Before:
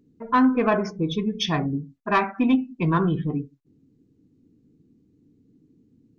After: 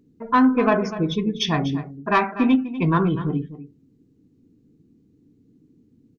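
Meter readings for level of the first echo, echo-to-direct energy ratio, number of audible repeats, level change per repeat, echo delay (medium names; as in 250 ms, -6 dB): -14.0 dB, -14.0 dB, 1, no regular repeats, 246 ms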